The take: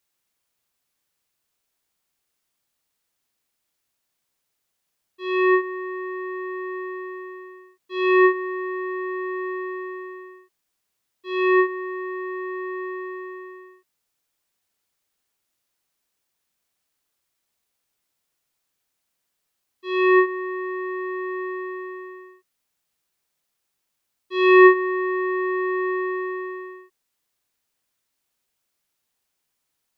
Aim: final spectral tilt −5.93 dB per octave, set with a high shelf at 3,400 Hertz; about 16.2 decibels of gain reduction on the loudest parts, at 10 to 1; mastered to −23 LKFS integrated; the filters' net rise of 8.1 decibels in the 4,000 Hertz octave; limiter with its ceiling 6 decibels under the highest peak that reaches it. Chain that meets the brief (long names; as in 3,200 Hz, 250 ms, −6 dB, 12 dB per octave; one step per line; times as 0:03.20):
high-shelf EQ 3,400 Hz +5 dB
parametric band 4,000 Hz +7 dB
downward compressor 10 to 1, threshold −24 dBFS
level +8 dB
brickwall limiter −15.5 dBFS